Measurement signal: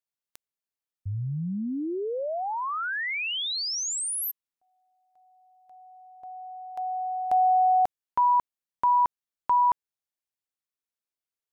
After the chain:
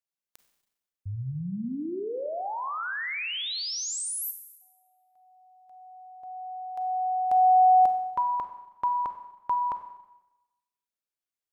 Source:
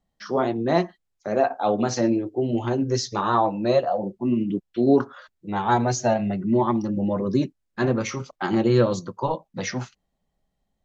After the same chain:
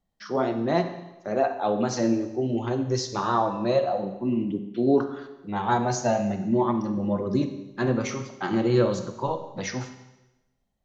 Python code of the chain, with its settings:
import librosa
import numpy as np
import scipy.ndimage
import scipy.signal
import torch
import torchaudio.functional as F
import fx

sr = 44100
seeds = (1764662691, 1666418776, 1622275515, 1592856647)

y = fx.rev_schroeder(x, sr, rt60_s=1.0, comb_ms=31, drr_db=8.0)
y = y * 10.0 ** (-3.0 / 20.0)